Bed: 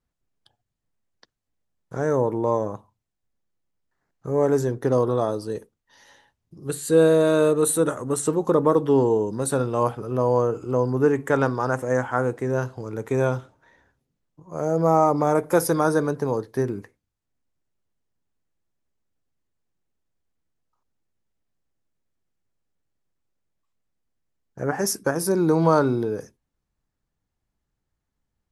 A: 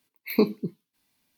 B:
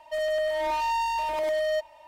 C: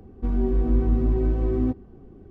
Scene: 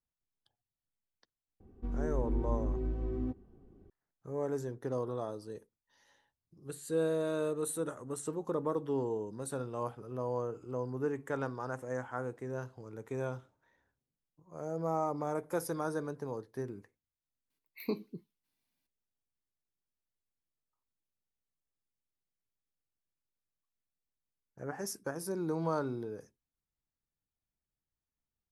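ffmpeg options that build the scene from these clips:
ffmpeg -i bed.wav -i cue0.wav -i cue1.wav -i cue2.wav -filter_complex "[0:a]volume=-15dB[link_01];[3:a]atrim=end=2.3,asetpts=PTS-STARTPTS,volume=-12.5dB,afade=type=in:duration=0.004:curve=hsin,afade=type=out:start_time=2.296:duration=0.004:curve=hsin,adelay=1600[link_02];[1:a]atrim=end=1.37,asetpts=PTS-STARTPTS,volume=-14dB,afade=type=in:duration=0.004:curve=hsin,afade=type=out:start_time=1.366:duration=0.004:curve=hsin,adelay=17500[link_03];[link_01][link_02][link_03]amix=inputs=3:normalize=0" out.wav

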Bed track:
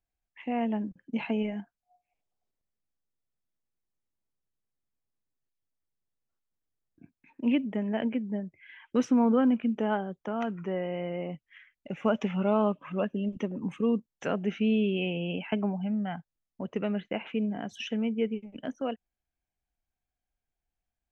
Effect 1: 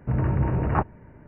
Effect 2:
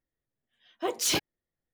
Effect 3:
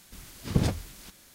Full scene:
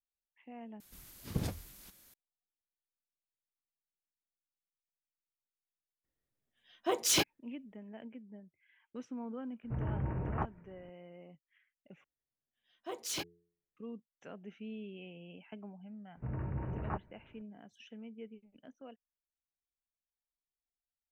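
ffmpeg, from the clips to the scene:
ffmpeg -i bed.wav -i cue0.wav -i cue1.wav -i cue2.wav -filter_complex "[2:a]asplit=2[link_01][link_02];[1:a]asplit=2[link_03][link_04];[0:a]volume=-19dB[link_05];[3:a]equalizer=frequency=13000:width=1.3:gain=10[link_06];[link_01]bandreject=frequency=4400:width=21[link_07];[link_02]bandreject=frequency=85.71:width_type=h:width=4,bandreject=frequency=171.42:width_type=h:width=4,bandreject=frequency=257.13:width_type=h:width=4,bandreject=frequency=342.84:width_type=h:width=4,bandreject=frequency=428.55:width_type=h:width=4[link_08];[link_05]asplit=3[link_09][link_10][link_11];[link_09]atrim=end=0.804[link_12];[link_06]atrim=end=1.34,asetpts=PTS-STARTPTS,volume=-10.5dB[link_13];[link_10]atrim=start=2.136:end=12.044[link_14];[link_08]atrim=end=1.73,asetpts=PTS-STARTPTS,volume=-11.5dB[link_15];[link_11]atrim=start=13.766[link_16];[link_07]atrim=end=1.73,asetpts=PTS-STARTPTS,volume=-1.5dB,afade=type=in:duration=0.004:curve=hsin,afade=type=out:start_time=1.726:duration=0.004:curve=hsin,adelay=6040[link_17];[link_03]atrim=end=1.27,asetpts=PTS-STARTPTS,volume=-12.5dB,afade=type=in:duration=0.004:curve=hsin,afade=type=out:start_time=1.266:duration=0.004:curve=hsin,adelay=9630[link_18];[link_04]atrim=end=1.27,asetpts=PTS-STARTPTS,volume=-15dB,afade=type=in:duration=0.004:curve=hsin,afade=type=out:start_time=1.266:duration=0.004:curve=hsin,adelay=16150[link_19];[link_12][link_13]acrossfade=duration=0.004:curve1=hsin:curve2=hsin[link_20];[link_20][link_14]acrossfade=duration=0.004:curve1=hsin:curve2=hsin[link_21];[link_21][link_15]acrossfade=duration=0.004:curve1=hsin:curve2=hsin[link_22];[link_22][link_16]acrossfade=duration=0.004:curve1=hsin:curve2=hsin[link_23];[link_23][link_17][link_18][link_19]amix=inputs=4:normalize=0" out.wav

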